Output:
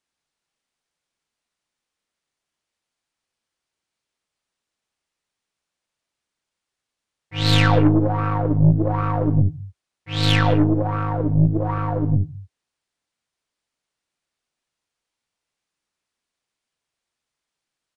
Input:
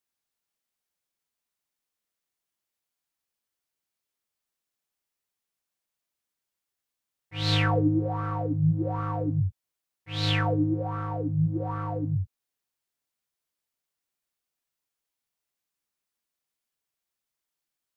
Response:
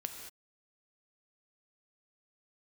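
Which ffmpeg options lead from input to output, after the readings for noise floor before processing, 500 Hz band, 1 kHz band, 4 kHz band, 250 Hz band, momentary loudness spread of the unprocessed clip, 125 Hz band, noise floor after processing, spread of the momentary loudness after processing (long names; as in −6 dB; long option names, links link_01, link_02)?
below −85 dBFS, +8.0 dB, +7.5 dB, +7.0 dB, +8.0 dB, 8 LU, +8.0 dB, −85 dBFS, 8 LU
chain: -filter_complex "[0:a]asplit=2[link_01][link_02];[1:a]atrim=start_sample=2205,afade=type=out:start_time=0.27:duration=0.01,atrim=end_sample=12348,lowpass=6300[link_03];[link_02][link_03]afir=irnorm=-1:irlink=0,volume=-2.5dB[link_04];[link_01][link_04]amix=inputs=2:normalize=0,aresample=22050,aresample=44100,aeval=exprs='0.422*(cos(1*acos(clip(val(0)/0.422,-1,1)))-cos(1*PI/2))+0.0422*(cos(6*acos(clip(val(0)/0.422,-1,1)))-cos(6*PI/2))':channel_layout=same,volume=3dB"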